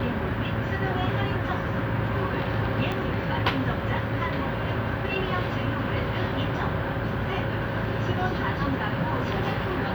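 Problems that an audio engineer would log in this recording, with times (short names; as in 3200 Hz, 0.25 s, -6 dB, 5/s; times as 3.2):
2.92 pop -17 dBFS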